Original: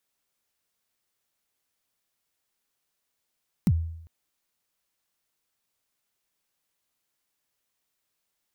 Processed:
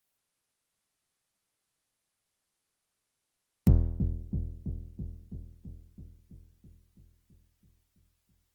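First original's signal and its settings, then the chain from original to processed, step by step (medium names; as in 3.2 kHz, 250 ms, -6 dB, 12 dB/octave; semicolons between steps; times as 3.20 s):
kick drum length 0.40 s, from 230 Hz, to 82 Hz, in 50 ms, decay 0.75 s, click on, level -15 dB
octave divider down 1 oct, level 0 dB; on a send: feedback echo behind a low-pass 330 ms, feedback 69%, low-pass 430 Hz, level -8.5 dB; on the sum: Opus 24 kbps 48 kHz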